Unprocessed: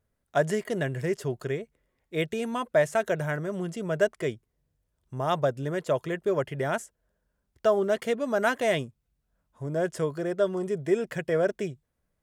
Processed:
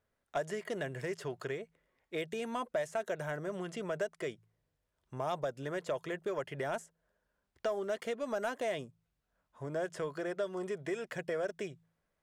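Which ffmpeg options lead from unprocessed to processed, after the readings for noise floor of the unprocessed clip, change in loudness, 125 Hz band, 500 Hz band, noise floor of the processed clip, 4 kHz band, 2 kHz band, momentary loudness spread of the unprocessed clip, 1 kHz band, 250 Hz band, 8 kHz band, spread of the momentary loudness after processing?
-79 dBFS, -9.5 dB, -12.5 dB, -9.5 dB, -83 dBFS, -8.0 dB, -9.0 dB, 9 LU, -8.5 dB, -10.5 dB, -8.0 dB, 6 LU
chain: -filter_complex "[0:a]acrossover=split=910|4400[a][b][c];[a]acompressor=threshold=-33dB:ratio=4[d];[b]acompressor=threshold=-45dB:ratio=4[e];[c]acompressor=threshold=-47dB:ratio=4[f];[d][e][f]amix=inputs=3:normalize=0,bandreject=f=54.91:t=h:w=4,bandreject=f=109.82:t=h:w=4,bandreject=f=164.73:t=h:w=4,asplit=2[g][h];[h]highpass=f=720:p=1,volume=11dB,asoftclip=type=tanh:threshold=-18dB[i];[g][i]amix=inputs=2:normalize=0,lowpass=f=3k:p=1,volume=-6dB,volume=-3.5dB"

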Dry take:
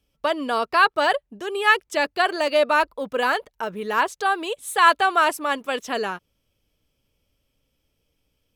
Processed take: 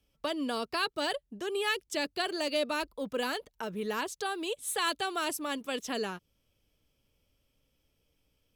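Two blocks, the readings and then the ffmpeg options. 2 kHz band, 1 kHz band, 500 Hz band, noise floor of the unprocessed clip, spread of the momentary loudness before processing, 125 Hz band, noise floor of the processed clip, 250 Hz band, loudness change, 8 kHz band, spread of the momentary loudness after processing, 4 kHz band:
-14.0 dB, -15.5 dB, -10.0 dB, -74 dBFS, 10 LU, n/a, -77 dBFS, -4.0 dB, -11.5 dB, -2.5 dB, 6 LU, -6.0 dB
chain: -filter_complex "[0:a]acrossover=split=390|3000[a][b][c];[b]acompressor=threshold=-39dB:ratio=2.5[d];[a][d][c]amix=inputs=3:normalize=0,volume=-2.5dB"

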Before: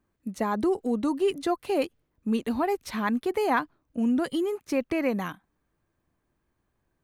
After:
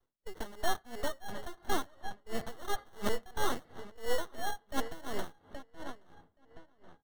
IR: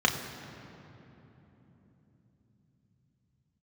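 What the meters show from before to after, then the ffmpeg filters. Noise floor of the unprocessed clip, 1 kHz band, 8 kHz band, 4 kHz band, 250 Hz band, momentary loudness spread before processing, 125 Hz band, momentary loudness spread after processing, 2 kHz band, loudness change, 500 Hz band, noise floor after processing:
-77 dBFS, -7.5 dB, +1.5 dB, -1.5 dB, -17.5 dB, 7 LU, -7.0 dB, 12 LU, -6.5 dB, -11.0 dB, -11.5 dB, -73 dBFS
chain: -filter_complex "[0:a]adynamicequalizer=threshold=0.01:dfrequency=240:dqfactor=1.3:tfrequency=240:tqfactor=1.3:attack=5:release=100:ratio=0.375:range=2:mode=cutabove:tftype=bell,aresample=11025,aeval=exprs='abs(val(0))':c=same,aresample=44100,acrusher=samples=18:mix=1:aa=0.000001,asplit=2[a][b];[b]adelay=824,lowpass=f=3.7k:p=1,volume=-10.5dB,asplit=2[c][d];[d]adelay=824,lowpass=f=3.7k:p=1,volume=0.35,asplit=2[e][f];[f]adelay=824,lowpass=f=3.7k:p=1,volume=0.35,asplit=2[g][h];[h]adelay=824,lowpass=f=3.7k:p=1,volume=0.35[i];[a][c][e][g][i]amix=inputs=5:normalize=0,asplit=2[j][k];[1:a]atrim=start_sample=2205,asetrate=29106,aresample=44100,adelay=87[l];[k][l]afir=irnorm=-1:irlink=0,volume=-34dB[m];[j][m]amix=inputs=2:normalize=0,aeval=exprs='val(0)*pow(10,-21*(0.5-0.5*cos(2*PI*2.9*n/s))/20)':c=same"

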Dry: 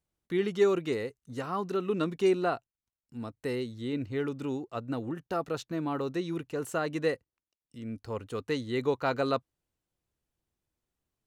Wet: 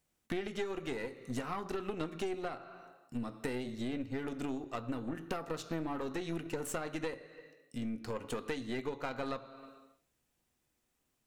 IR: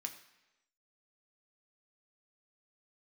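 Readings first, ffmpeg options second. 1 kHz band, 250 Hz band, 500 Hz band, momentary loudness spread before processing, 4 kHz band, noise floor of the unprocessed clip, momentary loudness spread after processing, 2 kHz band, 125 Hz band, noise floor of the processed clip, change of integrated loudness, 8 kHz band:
-6.5 dB, -5.5 dB, -9.5 dB, 12 LU, -5.0 dB, under -85 dBFS, 8 LU, -5.0 dB, -6.5 dB, -80 dBFS, -7.5 dB, +0.5 dB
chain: -filter_complex "[0:a]asplit=2[a][b];[1:a]atrim=start_sample=2205[c];[b][c]afir=irnorm=-1:irlink=0,volume=4dB[d];[a][d]amix=inputs=2:normalize=0,acompressor=threshold=-36dB:ratio=16,aeval=exprs='0.0473*(cos(1*acos(clip(val(0)/0.0473,-1,1)))-cos(1*PI/2))+0.0075*(cos(4*acos(clip(val(0)/0.0473,-1,1)))-cos(4*PI/2))':c=same,volume=1.5dB"

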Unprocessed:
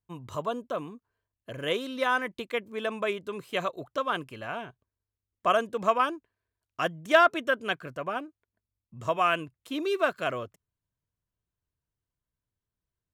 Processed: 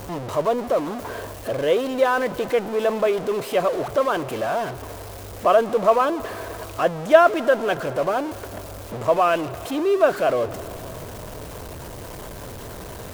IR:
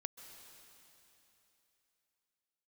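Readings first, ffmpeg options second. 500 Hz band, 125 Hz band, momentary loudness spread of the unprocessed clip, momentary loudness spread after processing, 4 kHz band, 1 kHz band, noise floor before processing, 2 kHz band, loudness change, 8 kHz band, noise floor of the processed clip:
+11.0 dB, +10.0 dB, 14 LU, 18 LU, +1.5 dB, +6.0 dB, under -85 dBFS, +2.0 dB, +7.5 dB, +12.5 dB, -36 dBFS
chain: -filter_complex "[0:a]aeval=exprs='val(0)+0.5*0.0447*sgn(val(0))':c=same,equalizer=f=560:t=o:w=1.9:g=13,asplit=2[a][b];[1:a]atrim=start_sample=2205,asetrate=35280,aresample=44100[c];[b][c]afir=irnorm=-1:irlink=0,volume=-5dB[d];[a][d]amix=inputs=2:normalize=0,volume=-7dB"

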